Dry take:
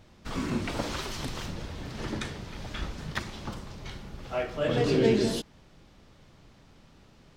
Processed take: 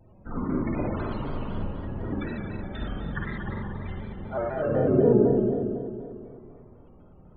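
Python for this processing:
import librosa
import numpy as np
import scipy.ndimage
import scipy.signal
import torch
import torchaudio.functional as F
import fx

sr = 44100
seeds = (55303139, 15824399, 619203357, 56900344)

y = fx.env_lowpass_down(x, sr, base_hz=820.0, full_db=-22.0)
y = fx.high_shelf(y, sr, hz=4600.0, db=-6.0)
y = fx.spec_topn(y, sr, count=32)
y = fx.rev_spring(y, sr, rt60_s=2.5, pass_ms=(45, 55), chirp_ms=40, drr_db=-3.5)
y = fx.vibrato_shape(y, sr, shape='square', rate_hz=4.0, depth_cents=100.0)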